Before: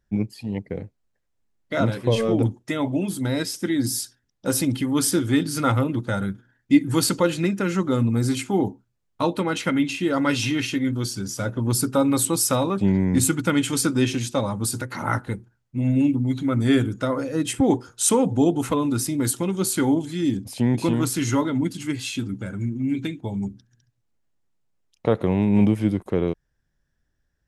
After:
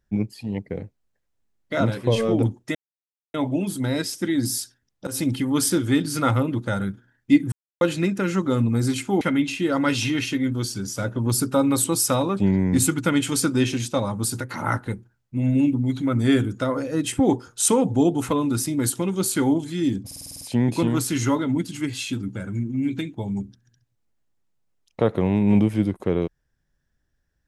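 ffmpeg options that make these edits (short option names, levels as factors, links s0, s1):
-filter_complex "[0:a]asplit=13[s0][s1][s2][s3][s4][s5][s6][s7][s8][s9][s10][s11][s12];[s0]atrim=end=2.75,asetpts=PTS-STARTPTS,afade=t=out:st=2.746:d=0.004:c=hsin,apad=pad_dur=0.59[s13];[s1]atrim=start=2.75:end=4.48,asetpts=PTS-STARTPTS,afade=t=in:d=0.004:c=hsin,afade=t=out:st=1.726:d=0.004:c=hsin:silence=0.11885[s14];[s2]atrim=start=4.48:end=6.93,asetpts=PTS-STARTPTS,afade=t=in:d=0.25:c=qsin:silence=0.11885,afade=t=out:st=2.446:d=0.004:c=hsin[s15];[s3]atrim=start=6.93:end=7.22,asetpts=PTS-STARTPTS,volume=0[s16];[s4]atrim=start=7.22:end=8.622,asetpts=PTS-STARTPTS,afade=t=in:d=0.004:c=hsin[s17];[s5]atrim=start=9.618:end=20.522[s18];[s6]atrim=start=20.468:end=20.522[s19];[s7]atrim=start=20.468:end=20.522[s20];[s8]atrim=start=20.468:end=20.522[s21];[s9]atrim=start=20.468:end=20.522[s22];[s10]atrim=start=20.468:end=20.522[s23];[s11]atrim=start=20.468:end=20.522[s24];[s12]atrim=start=20.468[s25];[s13][s14][s15][s16][s17]concat=n=5:v=0:a=1[s26];[s26][s18]acrossfade=d=0.004:c1=hsin:c2=hsin[s27];[s27][s19]acrossfade=d=0.004:c1=hsin:c2=hsin[s28];[s28][s20]acrossfade=d=0.004:c1=hsin:c2=hsin[s29];[s29][s21]acrossfade=d=0.004:c1=hsin:c2=hsin[s30];[s30][s22]acrossfade=d=0.004:c1=hsin:c2=hsin[s31];[s31][s23]acrossfade=d=0.004:c1=hsin:c2=hsin[s32];[s32][s24]acrossfade=d=0.004:c1=hsin:c2=hsin[s33];[s33][s25]acrossfade=d=0.004:c1=hsin:c2=hsin"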